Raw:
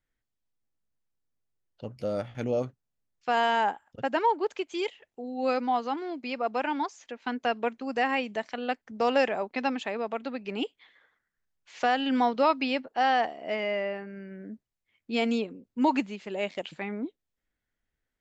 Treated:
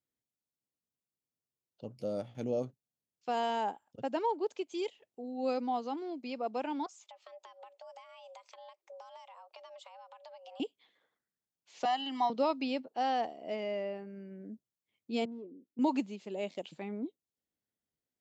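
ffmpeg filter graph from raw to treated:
ffmpeg -i in.wav -filter_complex "[0:a]asettb=1/sr,asplit=3[link_01][link_02][link_03];[link_01]atrim=end=6.864[link_04];[link_02]atrim=start=6.86:end=10.6,asetpts=PTS-STARTPTS,afade=type=in:duration=0.004:curve=qsin,afade=type=out:start_time=3.736:duration=0.004:curve=qsin,acompressor=threshold=-40dB:ratio=12:attack=3.2:release=140:knee=1:detection=peak,afreqshift=340[link_05];[link_03]atrim=start=10.596[link_06];[link_04][link_05]acrossfade=duration=0.004:curve1=hsin:curve2=qsin[link_07];[link_07][link_06]acrossfade=duration=0.004:curve1=qsin:curve2=hsin,asettb=1/sr,asplit=3[link_08][link_09][link_10];[link_08]atrim=end=11.854[link_11];[link_09]atrim=start=11.85:end=12.3,asetpts=PTS-STARTPTS,afade=type=in:duration=0.004:curve=qsin,afade=type=out:start_time=0.446:duration=0.004:curve=qsin,highpass=frequency=360:width=0.5412,highpass=frequency=360:width=1.3066,aecho=1:1:1:0.89,atrim=end_sample=19845[link_12];[link_10]atrim=start=12.296[link_13];[link_11][link_12]acrossfade=duration=0.004:curve1=hsin:curve2=qsin[link_14];[link_14][link_13]acrossfade=duration=0.004:curve1=qsin:curve2=hsin,asettb=1/sr,asplit=3[link_15][link_16][link_17];[link_15]atrim=end=15.254[link_18];[link_16]atrim=start=15.25:end=15.79,asetpts=PTS-STARTPTS,afade=type=in:duration=0.004:curve=qsin,afade=type=out:start_time=0.536:duration=0.004:curve=qsin,asoftclip=type=hard:threshold=-30.5dB,bandpass=frequency=320:width_type=q:width=2.8[link_19];[link_17]atrim=start=15.786[link_20];[link_18][link_19]acrossfade=duration=0.004:curve1=hsin:curve2=qsin[link_21];[link_21][link_20]acrossfade=duration=0.004:curve1=qsin:curve2=hsin,highpass=130,equalizer=frequency=1700:width=0.93:gain=-12,volume=-3.5dB" out.wav

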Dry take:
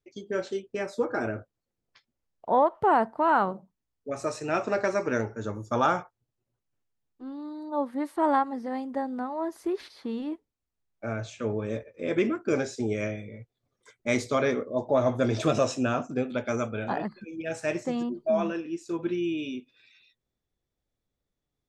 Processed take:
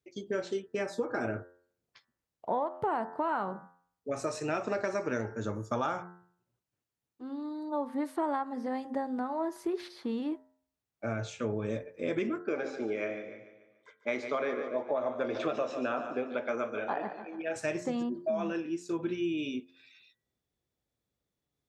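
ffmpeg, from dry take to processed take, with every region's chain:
ffmpeg -i in.wav -filter_complex "[0:a]asettb=1/sr,asplit=3[link_01][link_02][link_03];[link_01]atrim=end=12.434[link_04];[link_02]atrim=start=12.43:end=17.56,asetpts=PTS-STARTPTS,afade=type=in:duration=0.004:curve=qsin,afade=type=out:start_time=5.126:duration=0.004:curve=qsin,highpass=350,lowpass=2800,aecho=1:1:145|290|435|580|725:0.251|0.121|0.0579|0.0278|0.0133,atrim=end_sample=226233[link_05];[link_03]atrim=start=17.556[link_06];[link_04][link_05]acrossfade=duration=0.004:curve1=hsin:curve2=qsin[link_07];[link_07][link_06]acrossfade=duration=0.004:curve1=qsin:curve2=hsin,bandreject=frequency=88.4:width_type=h:width=4,bandreject=frequency=176.8:width_type=h:width=4,bandreject=frequency=265.2:width_type=h:width=4,bandreject=frequency=353.6:width_type=h:width=4,bandreject=frequency=442:width_type=h:width=4,bandreject=frequency=530.4:width_type=h:width=4,bandreject=frequency=618.8:width_type=h:width=4,bandreject=frequency=707.2:width_type=h:width=4,bandreject=frequency=795.6:width_type=h:width=4,bandreject=frequency=884:width_type=h:width=4,bandreject=frequency=972.4:width_type=h:width=4,bandreject=frequency=1060.8:width_type=h:width=4,bandreject=frequency=1149.2:width_type=h:width=4,bandreject=frequency=1237.6:width_type=h:width=4,bandreject=frequency=1326:width_type=h:width=4,bandreject=frequency=1414.4:width_type=h:width=4,bandreject=frequency=1502.8:width_type=h:width=4,bandreject=frequency=1591.2:width_type=h:width=4,bandreject=frequency=1679.6:width_type=h:width=4,bandreject=frequency=1768:width_type=h:width=4,bandreject=frequency=1856.4:width_type=h:width=4,bandreject=frequency=1944.8:width_type=h:width=4,acompressor=threshold=-28dB:ratio=6,highpass=66" out.wav

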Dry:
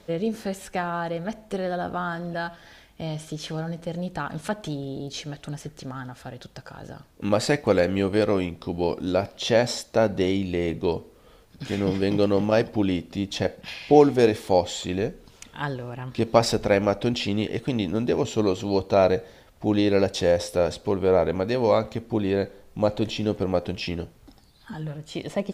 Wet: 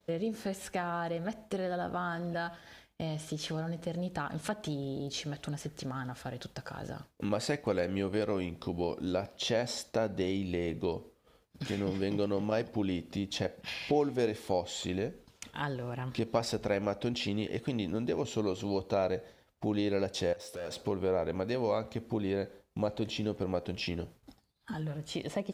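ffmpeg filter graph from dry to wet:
ffmpeg -i in.wav -filter_complex "[0:a]asettb=1/sr,asplit=3[link_01][link_02][link_03];[link_01]atrim=end=20.334[link_04];[link_02]atrim=start=20.33:end=20.81,asetpts=PTS-STARTPTS,afade=type=in:duration=0.004:curve=qsin,afade=type=out:start_time=0.476:duration=0.004:curve=qsin,highpass=frequency=240:poles=1,acompressor=threshold=-36dB:ratio=2:attack=3.2:release=140:knee=1:detection=peak,volume=34dB,asoftclip=hard,volume=-34dB[link_05];[link_03]atrim=start=20.806[link_06];[link_04][link_05]acrossfade=duration=0.004:curve1=hsin:curve2=qsin[link_07];[link_07][link_06]acrossfade=duration=0.004:curve1=qsin:curve2=hsin,highpass=46,acompressor=threshold=-36dB:ratio=2,agate=range=-33dB:threshold=-44dB:ratio=3:detection=peak" out.wav

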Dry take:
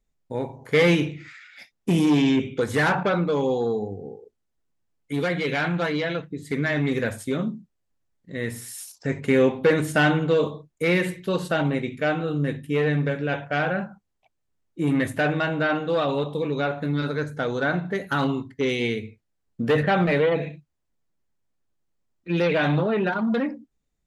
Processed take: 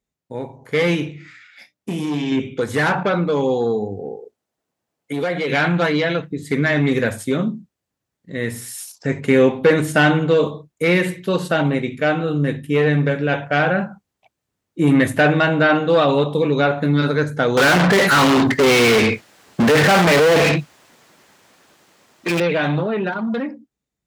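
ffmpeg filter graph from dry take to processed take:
ffmpeg -i in.wav -filter_complex "[0:a]asettb=1/sr,asplit=3[link_01][link_02][link_03];[link_01]atrim=end=1.124[link_04];[link_02]atrim=start=1.12:end=2.32,asetpts=PTS-STARTPTS,afade=type=in:duration=0.004:curve=qsin,afade=type=out:start_time=1.196:duration=0.004:curve=qsin,bandreject=frequency=60:width_type=h:width=6,bandreject=frequency=120:width_type=h:width=6,bandreject=frequency=180:width_type=h:width=6,bandreject=frequency=240:width_type=h:width=6,bandreject=frequency=300:width_type=h:width=6,bandreject=frequency=360:width_type=h:width=6,bandreject=frequency=420:width_type=h:width=6,bandreject=frequency=480:width_type=h:width=6,bandreject=frequency=540:width_type=h:width=6,bandreject=frequency=600:width_type=h:width=6,acompressor=threshold=-22dB:ratio=2.5:attack=3.2:release=140:knee=1:detection=peak,asplit=2[link_05][link_06];[link_06]adelay=27,volume=-10dB[link_07];[link_05][link_07]amix=inputs=2:normalize=0,atrim=end_sample=52920[link_08];[link_03]atrim=start=2.316[link_09];[link_04][link_08]acrossfade=duration=0.004:curve1=hsin:curve2=qsin[link_10];[link_10][link_09]acrossfade=duration=0.004:curve1=qsin:curve2=hsin,asettb=1/sr,asplit=3[link_11][link_12][link_13];[link_11]atrim=end=3.994[link_14];[link_12]atrim=start=3.99:end=5.5,asetpts=PTS-STARTPTS,afade=type=in:duration=0.004:curve=qsin,afade=type=out:start_time=1.506:duration=0.004:curve=qsin,equalizer=frequency=650:width=1.2:gain=6.5,acompressor=threshold=-27dB:ratio=2.5:attack=3.2:release=140:knee=1:detection=peak,highpass=frequency=150:poles=1[link_15];[link_13]atrim=start=5.496[link_16];[link_14][link_15]acrossfade=duration=0.004:curve1=hsin:curve2=qsin[link_17];[link_17][link_16]acrossfade=duration=0.004:curve1=qsin:curve2=hsin,asettb=1/sr,asplit=3[link_18][link_19][link_20];[link_18]atrim=end=17.574[link_21];[link_19]atrim=start=17.57:end=22.4,asetpts=PTS-STARTPTS,afade=type=in:duration=0.004:curve=qsin,afade=type=out:start_time=4.826:duration=0.004:curve=qsin,volume=25.5dB,asoftclip=hard,volume=-25.5dB,asplit=2[link_22][link_23];[link_23]highpass=frequency=720:poles=1,volume=39dB,asoftclip=type=tanh:threshold=-16dB[link_24];[link_22][link_24]amix=inputs=2:normalize=0,lowpass=frequency=4400:poles=1,volume=-6dB[link_25];[link_20]atrim=start=22.396[link_26];[link_21][link_25]acrossfade=duration=0.004:curve1=hsin:curve2=qsin[link_27];[link_27][link_26]acrossfade=duration=0.004:curve1=qsin:curve2=hsin,highpass=79,dynaudnorm=framelen=690:gausssize=9:maxgain=10dB" out.wav

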